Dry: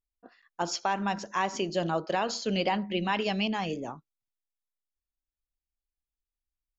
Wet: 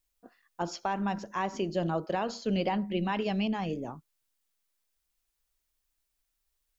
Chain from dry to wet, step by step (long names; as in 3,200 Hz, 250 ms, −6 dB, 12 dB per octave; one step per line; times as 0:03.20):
background noise blue −71 dBFS
spectral tilt −2 dB per octave
level −3.5 dB